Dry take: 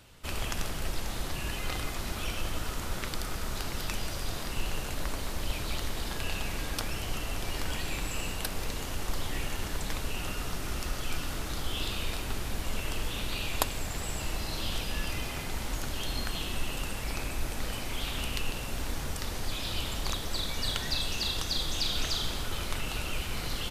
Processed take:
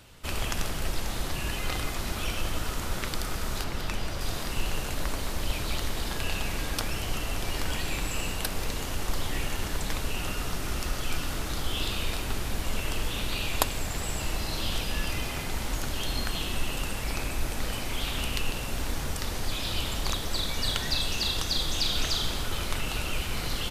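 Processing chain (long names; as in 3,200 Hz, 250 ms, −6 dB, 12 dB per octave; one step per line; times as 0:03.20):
0:03.64–0:04.21: high-shelf EQ 4,600 Hz −8 dB
level +3 dB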